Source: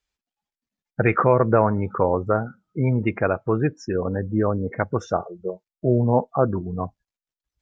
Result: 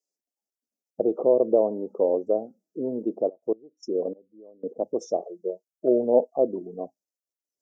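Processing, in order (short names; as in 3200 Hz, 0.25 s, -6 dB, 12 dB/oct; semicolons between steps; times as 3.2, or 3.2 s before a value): elliptic band-stop 630–5500 Hz, stop band 80 dB; 3.28–4.75 step gate "..xxx.....x." 149 bpm -24 dB; 5.86–6.31 dynamic EQ 550 Hz, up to +4 dB, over -29 dBFS, Q 1.3; HPF 280 Hz 24 dB/oct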